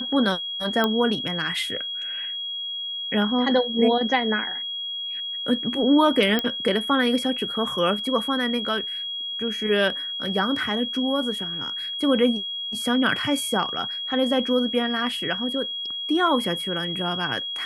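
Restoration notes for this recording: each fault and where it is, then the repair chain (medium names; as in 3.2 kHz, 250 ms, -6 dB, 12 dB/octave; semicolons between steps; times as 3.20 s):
whine 3.3 kHz -28 dBFS
0.84 s: pop -9 dBFS
6.39 s: pop -9 dBFS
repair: de-click; band-stop 3.3 kHz, Q 30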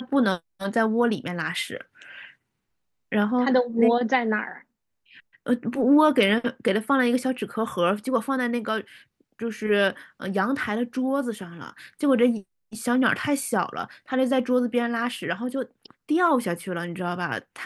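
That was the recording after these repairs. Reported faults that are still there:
nothing left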